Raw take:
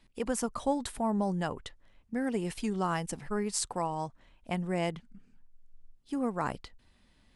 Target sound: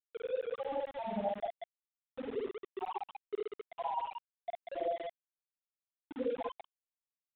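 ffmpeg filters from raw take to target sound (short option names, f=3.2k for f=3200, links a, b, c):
-filter_complex "[0:a]afftfilt=real='re':imag='-im':win_size=8192:overlap=0.75,highpass=370,afftfilt=real='re*gte(hypot(re,im),0.0891)':imag='im*gte(hypot(re,im),0.0891)':win_size=1024:overlap=0.75,equalizer=f=1.6k:t=o:w=1.5:g=-8.5,areverse,acompressor=threshold=-50dB:ratio=12,areverse,aphaser=in_gain=1:out_gain=1:delay=2.8:decay=0.37:speed=1.4:type=sinusoidal,asplit=2[a][b];[b]aecho=0:1:49.56|186.6:0.708|0.447[c];[a][c]amix=inputs=2:normalize=0,aeval=exprs='val(0)*gte(abs(val(0)),0.00126)':c=same,aresample=8000,aresample=44100,volume=15dB"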